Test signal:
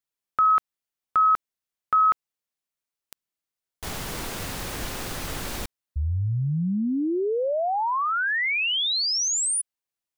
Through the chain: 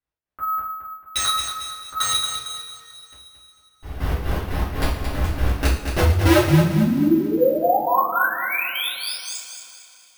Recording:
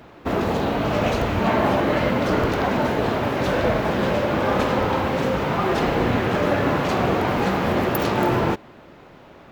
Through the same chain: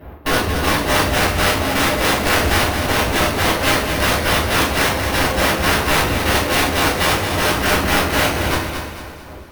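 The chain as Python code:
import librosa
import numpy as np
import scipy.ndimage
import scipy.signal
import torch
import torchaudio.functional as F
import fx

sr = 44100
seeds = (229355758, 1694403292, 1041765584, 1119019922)

p1 = fx.lowpass(x, sr, hz=1100.0, slope=6)
p2 = fx.peak_eq(p1, sr, hz=66.0, db=14.0, octaves=0.67)
p3 = fx.step_gate(p2, sr, bpm=120, pattern='x.x..x.x.', floor_db=-12.0, edge_ms=4.5)
p4 = (np.mod(10.0 ** (20.0 / 20.0) * p3 + 1.0, 2.0) - 1.0) / 10.0 ** (20.0 / 20.0)
p5 = p4 + fx.echo_feedback(p4, sr, ms=224, feedback_pct=38, wet_db=-7, dry=0)
p6 = fx.rev_double_slope(p5, sr, seeds[0], early_s=0.46, late_s=2.9, knee_db=-18, drr_db=-9.5)
y = np.repeat(scipy.signal.resample_poly(p6, 1, 3), 3)[:len(p6)]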